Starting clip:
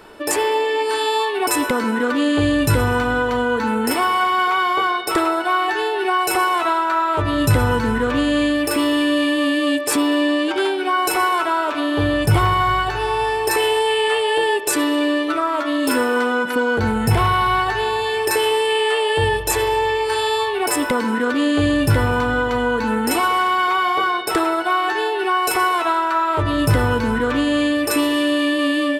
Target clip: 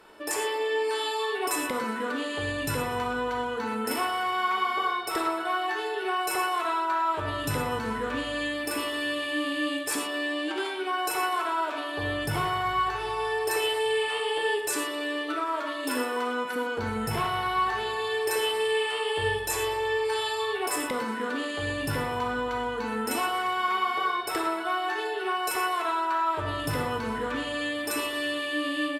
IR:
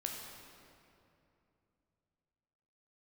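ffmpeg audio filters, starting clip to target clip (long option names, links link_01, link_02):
-filter_complex "[0:a]lowshelf=frequency=240:gain=-8,asplit=2[link_01][link_02];[link_02]adelay=789,lowpass=frequency=2000:poles=1,volume=-23dB,asplit=2[link_03][link_04];[link_04]adelay=789,lowpass=frequency=2000:poles=1,volume=0.5,asplit=2[link_05][link_06];[link_06]adelay=789,lowpass=frequency=2000:poles=1,volume=0.5[link_07];[link_01][link_03][link_05][link_07]amix=inputs=4:normalize=0[link_08];[1:a]atrim=start_sample=2205,atrim=end_sample=3969,asetrate=31311,aresample=44100[link_09];[link_08][link_09]afir=irnorm=-1:irlink=0,volume=-9dB"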